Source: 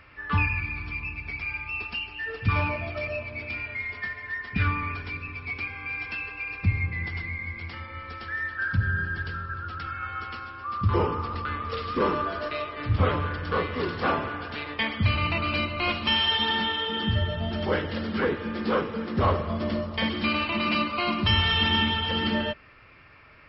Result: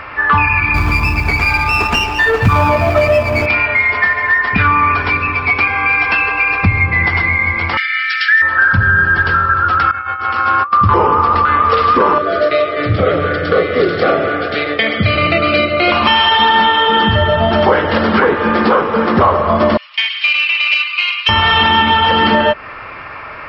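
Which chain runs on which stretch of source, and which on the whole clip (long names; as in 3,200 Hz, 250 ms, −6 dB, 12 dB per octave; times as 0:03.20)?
0:00.74–0:03.46: low-shelf EQ 360 Hz +9.5 dB + noise that follows the level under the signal 28 dB + windowed peak hold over 5 samples
0:07.77–0:08.42: Butterworth high-pass 1,500 Hz 72 dB per octave + high-shelf EQ 2,000 Hz +11.5 dB
0:09.91–0:10.73: high-pass filter 49 Hz + compressor whose output falls as the input rises −40 dBFS, ratio −0.5
0:12.18–0:15.92: Butterworth band-reject 970 Hz, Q 1.4 + loudspeaker in its box 120–5,000 Hz, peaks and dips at 240 Hz −7 dB, 740 Hz −3 dB, 1,600 Hz −9 dB, 2,700 Hz −8 dB
0:19.77–0:21.29: four-pole ladder high-pass 2,300 Hz, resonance 60% + highs frequency-modulated by the lows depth 0.17 ms
whole clip: parametric band 930 Hz +14 dB 2.4 octaves; downward compressor 3 to 1, threshold −24 dBFS; boost into a limiter +15.5 dB; level −1 dB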